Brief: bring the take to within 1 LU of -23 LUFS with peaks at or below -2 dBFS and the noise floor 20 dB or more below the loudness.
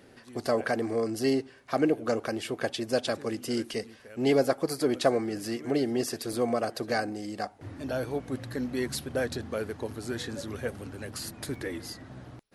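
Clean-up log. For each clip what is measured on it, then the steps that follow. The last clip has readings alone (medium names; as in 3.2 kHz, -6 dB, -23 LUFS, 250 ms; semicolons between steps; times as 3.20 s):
dropouts 2; longest dropout 2.8 ms; loudness -30.5 LUFS; peak level -10.5 dBFS; loudness target -23.0 LUFS
-> interpolate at 6.33/11.55 s, 2.8 ms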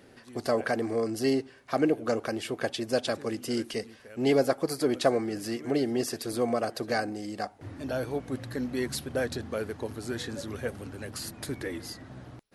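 dropouts 0; loudness -30.5 LUFS; peak level -10.5 dBFS; loudness target -23.0 LUFS
-> trim +7.5 dB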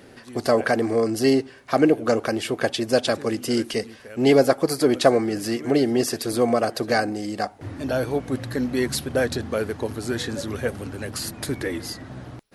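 loudness -23.0 LUFS; peak level -3.0 dBFS; noise floor -47 dBFS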